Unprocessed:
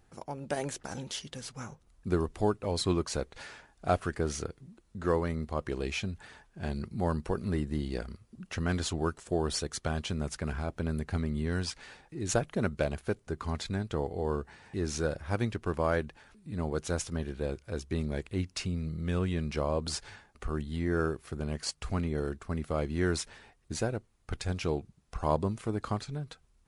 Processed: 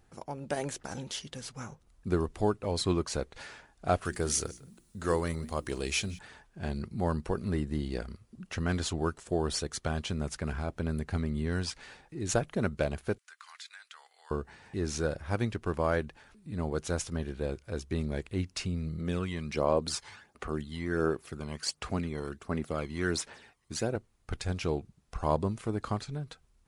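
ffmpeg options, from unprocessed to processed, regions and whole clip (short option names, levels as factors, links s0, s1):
-filter_complex "[0:a]asettb=1/sr,asplit=3[s0][s1][s2];[s0]atrim=end=4.054[s3];[s1]atrim=start=4.05:end=6.19,asetpts=PTS-STARTPTS,afade=t=in:d=0.004:c=qsin,afade=t=out:st=2.136:d=0.004:c=qsin,aemphasis=mode=production:type=75fm,bandreject=f=60:t=h:w=6,bandreject=f=120:t=h:w=6,bandreject=f=180:t=h:w=6,bandreject=f=240:t=h:w=6,bandreject=f=300:t=h:w=6,bandreject=f=360:t=h:w=6,aecho=1:1:178:0.0794,atrim=end_sample=94374[s4];[s2]atrim=start=6.186[s5];[s3][s4]acrossfade=d=0.004:c1=hsin:c2=qsin[s6];[s6][s5]acrossfade=d=0.004:c1=qsin:c2=hsin,asettb=1/sr,asplit=3[s7][s8][s9];[s7]atrim=end=13.184[s10];[s8]atrim=start=13.18:end=14.31,asetpts=PTS-STARTPTS,afade=t=in:d=0.004:c=qsin,afade=t=out:st=1.126:d=0.004:c=qsin,highpass=f=1400:w=0.5412,highpass=f=1400:w=1.3066,acompressor=threshold=0.00447:ratio=2:attack=3.2:release=140:knee=1:detection=peak[s11];[s9]atrim=start=14.306[s12];[s10][s11]acrossfade=d=0.004:c1=hsin:c2=qsin[s13];[s13][s12]acrossfade=d=0.004:c1=qsin:c2=hsin,asettb=1/sr,asplit=3[s14][s15][s16];[s14]atrim=end=18.994[s17];[s15]atrim=start=18.99:end=23.96,asetpts=PTS-STARTPTS,afade=t=in:d=0.004:c=qsin,afade=t=out:st=4.966:d=0.004:c=qsin,aphaser=in_gain=1:out_gain=1:delay=1:decay=0.51:speed=1.4:type=sinusoidal,highpass=f=270:p=1[s18];[s16]atrim=start=23.956[s19];[s17][s18]acrossfade=d=0.004:c1=hsin:c2=qsin[s20];[s20][s19]acrossfade=d=0.004:c1=qsin:c2=hsin"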